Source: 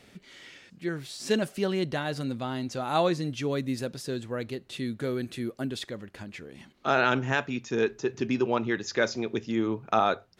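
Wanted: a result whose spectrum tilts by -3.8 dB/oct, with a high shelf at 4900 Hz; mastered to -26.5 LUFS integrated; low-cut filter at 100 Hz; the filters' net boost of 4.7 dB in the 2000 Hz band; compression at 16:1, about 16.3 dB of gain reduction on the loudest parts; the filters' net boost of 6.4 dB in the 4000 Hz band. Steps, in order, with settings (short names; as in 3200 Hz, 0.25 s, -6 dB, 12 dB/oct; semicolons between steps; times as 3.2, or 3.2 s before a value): HPF 100 Hz; bell 2000 Hz +5 dB; bell 4000 Hz +4.5 dB; high shelf 4900 Hz +4 dB; compressor 16:1, threshold -33 dBFS; gain +11.5 dB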